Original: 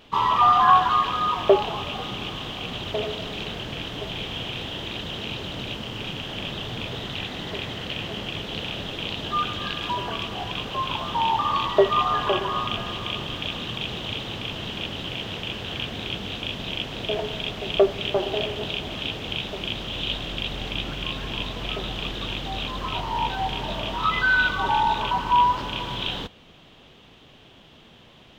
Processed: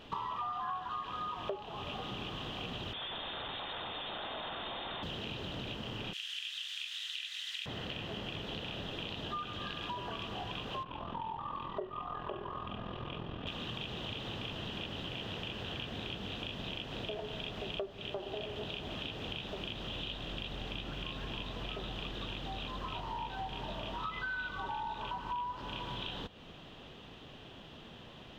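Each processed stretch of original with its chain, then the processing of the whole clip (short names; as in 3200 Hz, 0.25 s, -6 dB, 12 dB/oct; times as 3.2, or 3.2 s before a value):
2.93–5.03 infinite clipping + rippled Chebyshev high-pass 190 Hz, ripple 3 dB + inverted band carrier 3900 Hz
6.13–7.66 inverse Chebyshev high-pass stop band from 420 Hz, stop band 70 dB + bell 8600 Hz +12.5 dB 1.7 oct
10.83–13.47 tape spacing loss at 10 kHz 31 dB + ring modulator 21 Hz + flutter echo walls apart 6 m, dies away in 0.21 s
whole clip: high shelf 4900 Hz -7 dB; notch 2200 Hz, Q 13; compressor 6:1, threshold -38 dBFS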